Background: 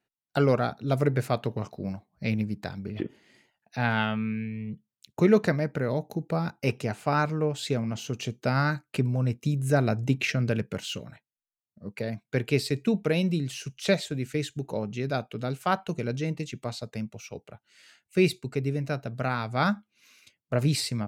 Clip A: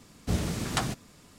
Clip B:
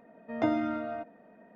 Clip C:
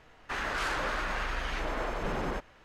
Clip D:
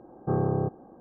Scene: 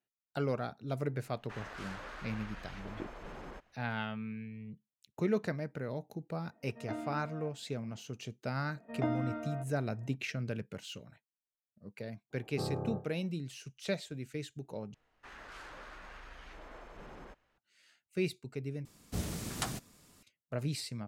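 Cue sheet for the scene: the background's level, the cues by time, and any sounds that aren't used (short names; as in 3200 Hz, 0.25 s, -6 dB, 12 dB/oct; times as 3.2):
background -11 dB
1.2 add C -14 dB
6.47 add B -13 dB
8.6 add B -6 dB + high shelf 4500 Hz -6.5 dB
12.3 add D -10.5 dB, fades 0.05 s + flutter echo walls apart 5 m, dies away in 0.24 s
14.94 replace with C -17.5 dB
18.85 replace with A -8.5 dB + high shelf 8400 Hz +10.5 dB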